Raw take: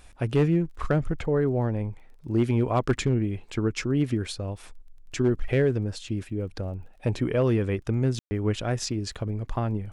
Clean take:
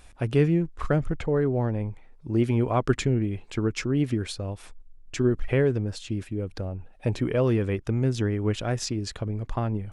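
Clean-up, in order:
clipped peaks rebuilt −15 dBFS
click removal
ambience match 0:08.19–0:08.31

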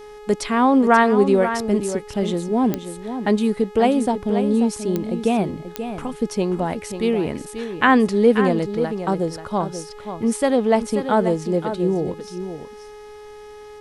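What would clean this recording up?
click removal
hum removal 420 Hz, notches 33
echo removal 535 ms −9.5 dB

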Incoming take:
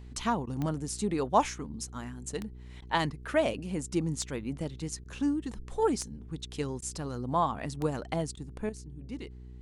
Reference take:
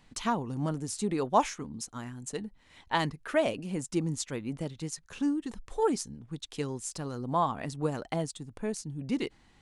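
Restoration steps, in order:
click removal
hum removal 61.6 Hz, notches 7
repair the gap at 0:00.46/0:02.81/0:05.04/0:06.81/0:08.36, 10 ms
level correction +10 dB, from 0:08.69

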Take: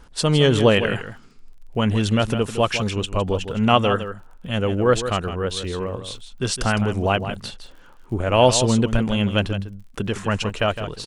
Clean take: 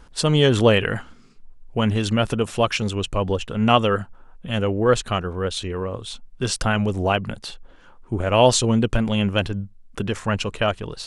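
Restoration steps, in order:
click removal
echo removal 160 ms −10.5 dB

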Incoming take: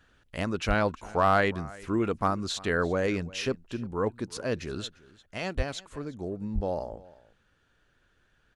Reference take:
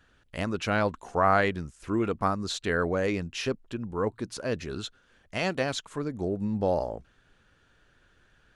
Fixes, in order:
clipped peaks rebuilt −13 dBFS
high-pass at the plosives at 0:00.67/0:05.56/0:06.54
echo removal 348 ms −21.5 dB
level correction +5 dB, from 0:05.11

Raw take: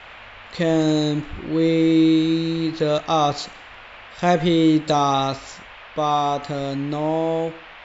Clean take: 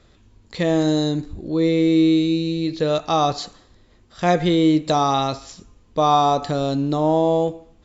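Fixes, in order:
noise reduction from a noise print 11 dB
level correction +4 dB, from 0:05.58

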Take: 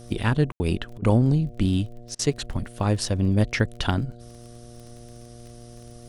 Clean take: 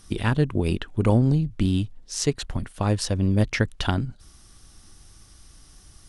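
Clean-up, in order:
click removal
hum removal 119 Hz, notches 6
ambience match 0:00.52–0:00.60
repair the gap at 0:00.98/0:02.15, 40 ms

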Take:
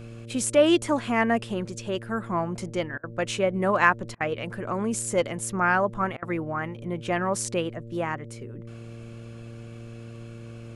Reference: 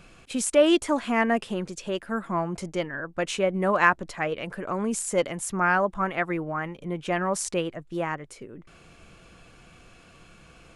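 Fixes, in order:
hum removal 115.4 Hz, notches 5
repair the gap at 0:02.98/0:04.15/0:06.17, 53 ms

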